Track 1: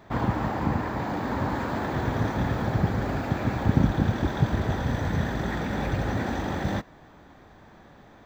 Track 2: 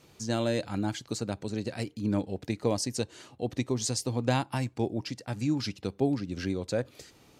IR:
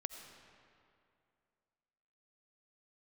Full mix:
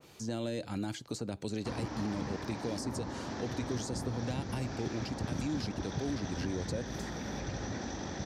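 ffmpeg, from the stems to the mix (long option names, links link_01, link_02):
-filter_complex "[0:a]lowpass=frequency=5700:width_type=q:width=7.2,adelay=1550,volume=-6.5dB[link_01];[1:a]alimiter=limit=-23dB:level=0:latency=1:release=21,volume=3dB[link_02];[link_01][link_02]amix=inputs=2:normalize=0,lowshelf=frequency=270:gain=-5.5,acrossover=split=490|1300[link_03][link_04][link_05];[link_03]acompressor=threshold=-32dB:ratio=4[link_06];[link_04]acompressor=threshold=-48dB:ratio=4[link_07];[link_05]acompressor=threshold=-51dB:ratio=4[link_08];[link_06][link_07][link_08]amix=inputs=3:normalize=0,adynamicequalizer=threshold=0.00112:dfrequency=2000:dqfactor=0.7:tfrequency=2000:tqfactor=0.7:attack=5:release=100:ratio=0.375:range=2.5:mode=boostabove:tftype=highshelf"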